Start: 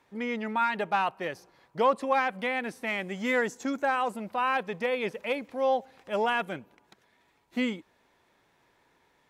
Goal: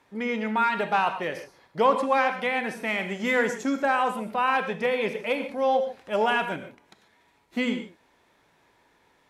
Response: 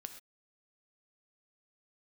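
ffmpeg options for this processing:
-filter_complex "[0:a]asplit=3[link_01][link_02][link_03];[link_01]afade=type=out:start_time=2.17:duration=0.02[link_04];[link_02]highpass=210,afade=type=in:start_time=2.17:duration=0.02,afade=type=out:start_time=2.59:duration=0.02[link_05];[link_03]afade=type=in:start_time=2.59:duration=0.02[link_06];[link_04][link_05][link_06]amix=inputs=3:normalize=0[link_07];[1:a]atrim=start_sample=2205,atrim=end_sample=3969,asetrate=25578,aresample=44100[link_08];[link_07][link_08]afir=irnorm=-1:irlink=0,volume=5dB"

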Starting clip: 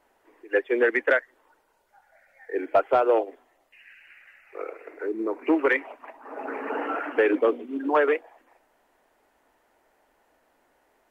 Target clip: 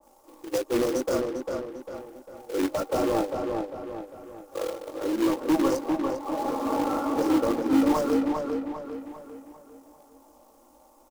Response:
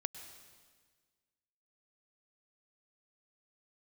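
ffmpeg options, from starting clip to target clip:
-filter_complex "[0:a]flanger=delay=19.5:depth=2.6:speed=2.9,aecho=1:1:3.6:0.87,asoftclip=type=tanh:threshold=-24dB,asuperstop=centerf=2500:order=12:qfactor=0.66,tremolo=f=54:d=0.261,acrossover=split=220|370|1200[link_01][link_02][link_03][link_04];[link_03]acompressor=threshold=-40dB:ratio=16[link_05];[link_01][link_02][link_05][link_04]amix=inputs=4:normalize=0,highshelf=frequency=2800:gain=5.5,acrusher=bits=2:mode=log:mix=0:aa=0.000001,asplit=2[link_06][link_07];[link_07]adelay=399,lowpass=frequency=3000:poles=1,volume=-4dB,asplit=2[link_08][link_09];[link_09]adelay=399,lowpass=frequency=3000:poles=1,volume=0.45,asplit=2[link_10][link_11];[link_11]adelay=399,lowpass=frequency=3000:poles=1,volume=0.45,asplit=2[link_12][link_13];[link_13]adelay=399,lowpass=frequency=3000:poles=1,volume=0.45,asplit=2[link_14][link_15];[link_15]adelay=399,lowpass=frequency=3000:poles=1,volume=0.45,asplit=2[link_16][link_17];[link_17]adelay=399,lowpass=frequency=3000:poles=1,volume=0.45[link_18];[link_06][link_08][link_10][link_12][link_14][link_16][link_18]amix=inputs=7:normalize=0,adynamicequalizer=threshold=0.00224:dfrequency=1800:dqfactor=0.7:tfrequency=1800:tqfactor=0.7:attack=5:release=100:ratio=0.375:range=3:mode=cutabove:tftype=highshelf,volume=9dB"

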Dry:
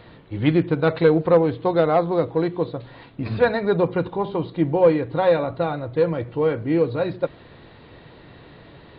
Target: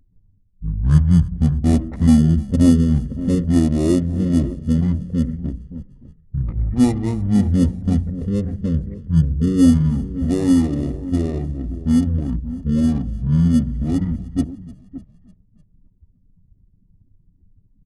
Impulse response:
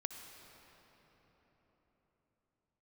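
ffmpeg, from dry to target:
-filter_complex "[0:a]asplit=2[link_01][link_02];[link_02]acrusher=samples=14:mix=1:aa=0.000001,volume=-9dB[link_03];[link_01][link_03]amix=inputs=2:normalize=0,asplit=2[link_04][link_05];[link_05]adelay=285.7,volume=-13dB,highshelf=frequency=4000:gain=-6.43[link_06];[link_04][link_06]amix=inputs=2:normalize=0,anlmdn=25.1,equalizer=frequency=2100:width=0.36:gain=-13.5,asplit=2[link_07][link_08];[link_08]asplit=4[link_09][link_10][link_11][link_12];[link_09]adelay=151,afreqshift=-52,volume=-20.5dB[link_13];[link_10]adelay=302,afreqshift=-104,volume=-25.5dB[link_14];[link_11]adelay=453,afreqshift=-156,volume=-30.6dB[link_15];[link_12]adelay=604,afreqshift=-208,volume=-35.6dB[link_16];[link_13][link_14][link_15][link_16]amix=inputs=4:normalize=0[link_17];[link_07][link_17]amix=inputs=2:normalize=0,adynamicequalizer=threshold=0.00562:dfrequency=1100:dqfactor=5.3:tfrequency=1100:tqfactor=5.3:attack=5:release=100:ratio=0.375:range=1.5:mode=boostabove:tftype=bell,asetrate=22182,aresample=44100,volume=4dB"

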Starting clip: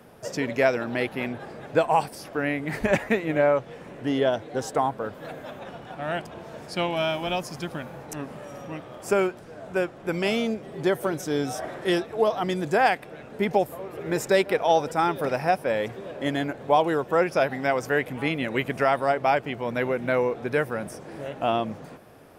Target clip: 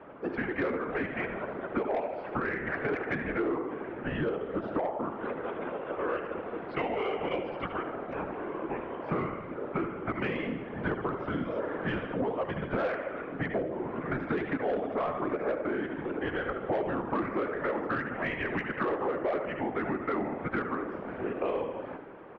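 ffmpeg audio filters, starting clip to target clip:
ffmpeg -i in.wav -filter_complex "[0:a]acontrast=77,acrossover=split=460 2200:gain=0.178 1 0.141[link_01][link_02][link_03];[link_01][link_02][link_03]amix=inputs=3:normalize=0,aecho=1:1:74|148|222|296|370|444:0.355|0.174|0.0852|0.0417|0.0205|0.01,highpass=frequency=360:width_type=q:width=0.5412,highpass=frequency=360:width_type=q:width=1.307,lowpass=frequency=3500:width_type=q:width=0.5176,lowpass=frequency=3500:width_type=q:width=0.7071,lowpass=frequency=3500:width_type=q:width=1.932,afreqshift=-200,afftfilt=real='hypot(re,im)*cos(2*PI*random(0))':imag='hypot(re,im)*sin(2*PI*random(1))':win_size=512:overlap=0.75,asoftclip=type=tanh:threshold=-17.5dB,acompressor=threshold=-35dB:ratio=5,volume=6dB" out.wav

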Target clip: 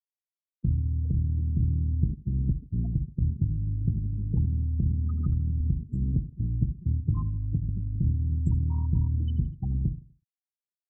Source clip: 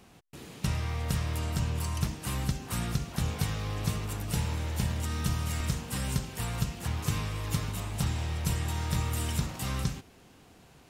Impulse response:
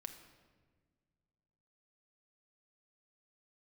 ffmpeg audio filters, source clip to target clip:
-filter_complex "[0:a]afftfilt=real='re*gte(hypot(re,im),0.0708)':imag='im*gte(hypot(re,im),0.0708)':win_size=1024:overlap=0.75,adynamicequalizer=threshold=0.00126:dfrequency=510:dqfactor=2:tfrequency=510:tqfactor=2:attack=5:release=100:ratio=0.375:range=3.5:mode=cutabove:tftype=bell,acrossover=split=130[link_01][link_02];[link_02]acompressor=threshold=-35dB:ratio=10[link_03];[link_01][link_03]amix=inputs=2:normalize=0,acrossover=split=960[link_04][link_05];[link_05]alimiter=level_in=28.5dB:limit=-24dB:level=0:latency=1:release=22,volume=-28.5dB[link_06];[link_04][link_06]amix=inputs=2:normalize=0,tremolo=f=180:d=0.333,aphaser=in_gain=1:out_gain=1:delay=1.3:decay=0.24:speed=0.47:type=triangular,asplit=2[link_07][link_08];[link_08]aecho=0:1:82|164|246:0.106|0.0434|0.0178[link_09];[link_07][link_09]amix=inputs=2:normalize=0,aresample=16000,aresample=44100,volume=6dB"

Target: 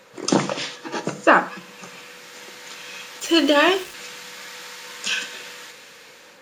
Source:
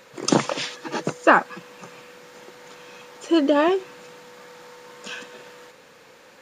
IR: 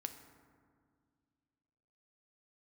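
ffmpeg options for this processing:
-filter_complex "[0:a]bandreject=frequency=50:width_type=h:width=6,bandreject=frequency=100:width_type=h:width=6,bandreject=frequency=150:width_type=h:width=6,acrossover=split=1700[link_01][link_02];[link_02]dynaudnorm=framelen=630:gausssize=5:maxgain=14dB[link_03];[link_01][link_03]amix=inputs=2:normalize=0,asettb=1/sr,asplit=3[link_04][link_05][link_06];[link_04]atrim=end=3.204[link_07];[link_05]atrim=start=3.2:end=3.94,asetpts=PTS-STARTPTS,afade=type=in:duration=0.004:curve=qsin,afade=type=out:start_time=0.736:duration=0.004:curve=qsin,aeval=exprs='val(0)*gte(abs(val(0)),0.0237)':channel_layout=same[link_08];[link_06]atrim=start=3.936[link_09];[link_07][link_08]acrossfade=duration=0.004:curve1=hsin:curve2=qsin[link_10];[link_10][link_09]acrossfade=duration=0.004:curve1=qsin:curve2=hsin,flanger=delay=9.3:depth=5.8:regen=-69:speed=0.59:shape=triangular,asplit=2[link_11][link_12];[1:a]atrim=start_sample=2205,atrim=end_sample=3969,asetrate=29988,aresample=44100[link_13];[link_12][link_13]afir=irnorm=-1:irlink=0,volume=5dB[link_14];[link_11][link_14]amix=inputs=2:normalize=0,volume=-4dB"

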